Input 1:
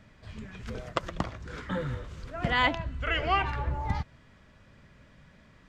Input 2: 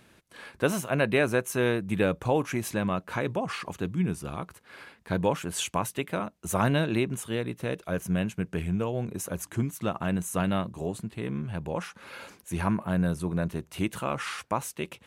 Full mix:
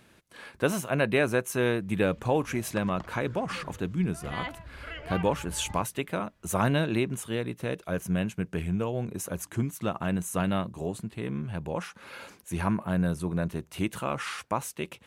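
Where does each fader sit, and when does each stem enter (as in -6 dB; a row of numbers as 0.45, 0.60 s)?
-11.5, -0.5 dB; 1.80, 0.00 s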